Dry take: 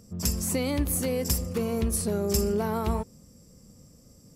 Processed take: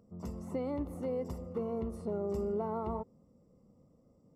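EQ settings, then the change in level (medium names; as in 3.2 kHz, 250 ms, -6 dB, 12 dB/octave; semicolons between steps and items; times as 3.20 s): Savitzky-Golay filter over 65 samples; bass shelf 170 Hz -12 dB; -4.5 dB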